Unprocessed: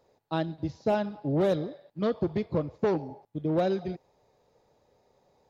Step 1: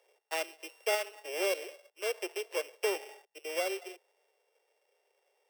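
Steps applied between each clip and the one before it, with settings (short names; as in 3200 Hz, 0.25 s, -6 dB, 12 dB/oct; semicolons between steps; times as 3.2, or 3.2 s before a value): sample sorter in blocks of 16 samples; steep high-pass 380 Hz 72 dB/oct; vocal rider 2 s; gain -5.5 dB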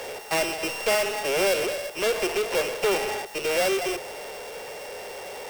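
power-law curve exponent 0.35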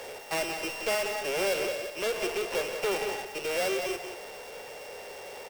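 echo 0.181 s -8.5 dB; gain -6 dB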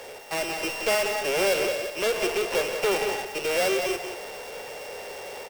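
AGC gain up to 5 dB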